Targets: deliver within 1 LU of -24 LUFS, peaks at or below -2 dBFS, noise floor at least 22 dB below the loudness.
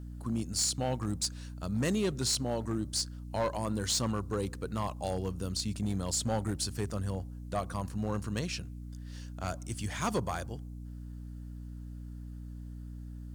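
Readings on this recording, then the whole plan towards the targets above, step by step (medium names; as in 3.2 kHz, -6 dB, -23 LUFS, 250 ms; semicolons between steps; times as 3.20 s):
clipped samples 0.9%; clipping level -24.5 dBFS; hum 60 Hz; highest harmonic 300 Hz; hum level -40 dBFS; loudness -33.5 LUFS; peak level -24.5 dBFS; loudness target -24.0 LUFS
-> clip repair -24.5 dBFS; hum notches 60/120/180/240/300 Hz; trim +9.5 dB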